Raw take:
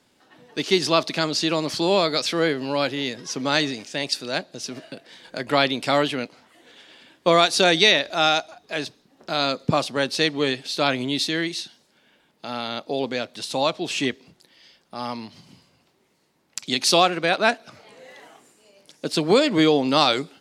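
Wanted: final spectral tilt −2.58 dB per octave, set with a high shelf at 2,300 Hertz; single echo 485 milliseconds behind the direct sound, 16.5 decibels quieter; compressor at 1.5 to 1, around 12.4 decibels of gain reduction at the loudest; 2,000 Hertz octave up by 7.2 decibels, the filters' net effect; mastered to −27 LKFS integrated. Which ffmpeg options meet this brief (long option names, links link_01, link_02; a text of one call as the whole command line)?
ffmpeg -i in.wav -af "equalizer=frequency=2000:width_type=o:gain=7.5,highshelf=frequency=2300:gain=3,acompressor=threshold=-43dB:ratio=1.5,aecho=1:1:485:0.15,volume=2dB" out.wav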